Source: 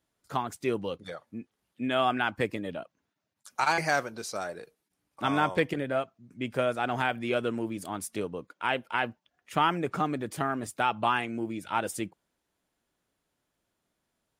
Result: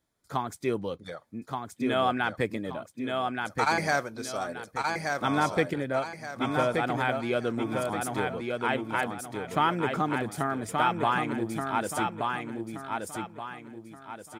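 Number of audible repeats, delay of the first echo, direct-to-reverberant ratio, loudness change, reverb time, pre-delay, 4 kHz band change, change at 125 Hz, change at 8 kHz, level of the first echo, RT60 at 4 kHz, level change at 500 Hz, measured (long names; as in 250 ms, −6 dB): 4, 1,176 ms, no reverb audible, +1.0 dB, no reverb audible, no reverb audible, 0.0 dB, +3.0 dB, +1.5 dB, −4.0 dB, no reverb audible, +2.0 dB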